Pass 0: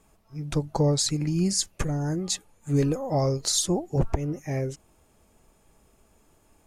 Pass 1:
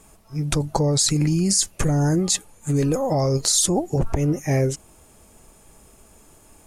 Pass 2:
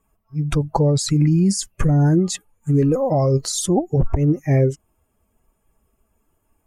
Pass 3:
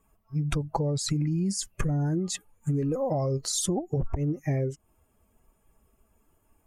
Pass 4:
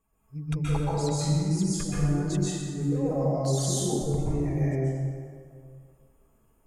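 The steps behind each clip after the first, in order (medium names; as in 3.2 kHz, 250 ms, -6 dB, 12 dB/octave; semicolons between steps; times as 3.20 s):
peaking EQ 9.5 kHz +7 dB 1.2 oct; in parallel at +1.5 dB: compressor with a negative ratio -27 dBFS, ratio -0.5
expander on every frequency bin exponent 1.5; treble shelf 2 kHz -10.5 dB; trim +6 dB
compression 6:1, threshold -25 dBFS, peak gain reduction 12.5 dB
plate-style reverb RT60 2.1 s, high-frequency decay 0.6×, pre-delay 115 ms, DRR -8.5 dB; trim -8.5 dB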